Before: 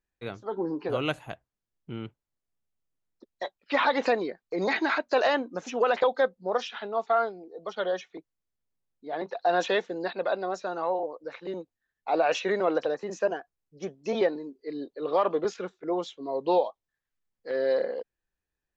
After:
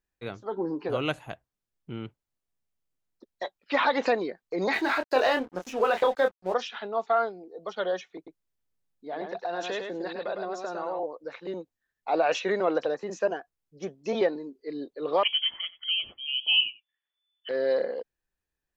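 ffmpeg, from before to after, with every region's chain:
-filter_complex "[0:a]asettb=1/sr,asplit=3[a][b][c];[a]atrim=end=4.734[d];[b]atrim=start=4.73:end=6.54,asetpts=PTS-STARTPTS,afade=t=in:d=0.004:c=qsin,afade=t=out:st=1.806:d=0.004:c=qsin,asplit=2[e][f];[f]adelay=27,volume=-6dB[g];[e][g]amix=inputs=2:normalize=0,atrim=end_sample=79821,aeval=exprs='sgn(val(0))*max(abs(val(0))-0.00531,0)':c=same[h];[c]atrim=start=6.536[i];[d][h]acrossfade=d=0.004:c1=hsin:c2=qsin[j];[j][i]acrossfade=d=0.004:c1=qsin:c2=hsin,asettb=1/sr,asplit=3[k][l][m];[k]atrim=end=8.164[n];[l]atrim=start=8.16:end=10.99,asetpts=PTS-STARTPTS,afade=t=in:d=0.004:c=qsin,afade=t=out:st=2.826:d=0.004:c=qsin,acompressor=threshold=-30dB:ratio=3:attack=3.2:release=140:knee=1:detection=peak,aecho=1:1:105:0.562,atrim=end_sample=124803[o];[m]atrim=start=10.986[p];[n][o]acrossfade=d=0.004:c1=hsin:c2=qsin[q];[q][p]acrossfade=d=0.004:c1=qsin:c2=hsin,asettb=1/sr,asplit=3[r][s][t];[r]atrim=end=15.234[u];[s]atrim=start=15.23:end=17.49,asetpts=PTS-STARTPTS,afade=t=in:d=0.004:c=qsin,afade=t=out:st=2.256:d=0.004:c=qsin,aecho=1:1:91:0.1,atrim=end_sample=99666,lowpass=f=3k:t=q:w=0.5098,lowpass=f=3k:t=q:w=0.6013,lowpass=f=3k:t=q:w=0.9,lowpass=f=3k:t=q:w=2.563,afreqshift=-3500[v];[t]atrim=start=17.486[w];[u][v]acrossfade=d=0.004:c1=hsin:c2=qsin[x];[x][w]acrossfade=d=0.004:c1=qsin:c2=hsin"

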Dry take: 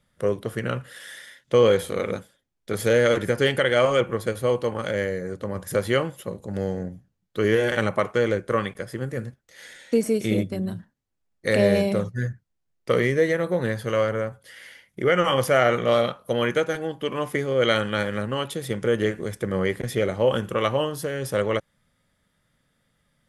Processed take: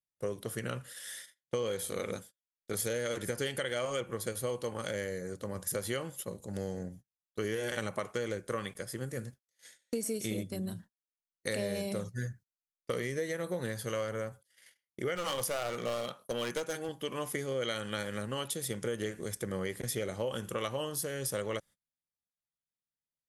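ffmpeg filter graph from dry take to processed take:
-filter_complex "[0:a]asettb=1/sr,asplit=3[a][b][c];[a]atrim=end=15.154[d];[b]atrim=start=15.15:end=16.89,asetpts=PTS-STARTPTS,afade=t=in:d=0.004:c=qsin,afade=t=out:st=1.736:d=0.004:c=qsin,highpass=130,aeval=exprs='clip(val(0),-1,0.0944)':c=same[e];[c]atrim=start=16.886[f];[d][e]acrossfade=d=0.004:c1=hsin:c2=qsin[g];[g][f]acrossfade=d=0.004:c1=qsin:c2=hsin,agate=range=-29dB:threshold=-42dB:ratio=16:detection=peak,bass=f=250:g=0,treble=f=4k:g=13,acompressor=threshold=-22dB:ratio=6,volume=-8.5dB"

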